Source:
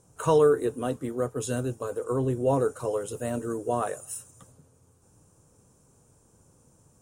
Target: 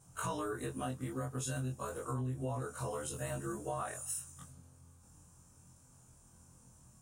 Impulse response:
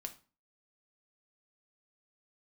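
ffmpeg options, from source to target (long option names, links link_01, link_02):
-filter_complex "[0:a]afftfilt=real='re':imag='-im':win_size=2048:overlap=0.75,equalizer=frequency=440:width_type=o:width=0.97:gain=-13,asplit=2[link_01][link_02];[link_02]alimiter=level_in=8dB:limit=-24dB:level=0:latency=1:release=153,volume=-8dB,volume=1dB[link_03];[link_01][link_03]amix=inputs=2:normalize=0,acompressor=threshold=-33dB:ratio=6,volume=-1.5dB"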